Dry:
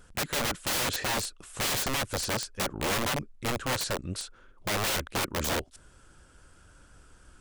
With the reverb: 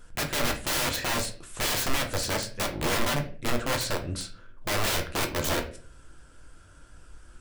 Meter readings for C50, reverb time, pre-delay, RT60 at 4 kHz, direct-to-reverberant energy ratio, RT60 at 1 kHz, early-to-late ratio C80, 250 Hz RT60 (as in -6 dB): 11.0 dB, 0.40 s, 3 ms, 0.35 s, 3.0 dB, 0.35 s, 15.5 dB, 0.50 s